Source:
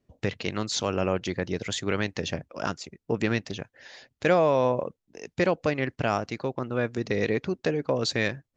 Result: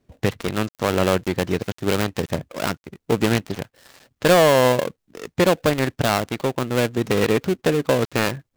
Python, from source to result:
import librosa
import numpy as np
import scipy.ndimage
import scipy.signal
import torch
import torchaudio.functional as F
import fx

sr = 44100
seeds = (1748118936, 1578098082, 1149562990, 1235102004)

y = fx.dead_time(x, sr, dead_ms=0.23)
y = y * librosa.db_to_amplitude(7.5)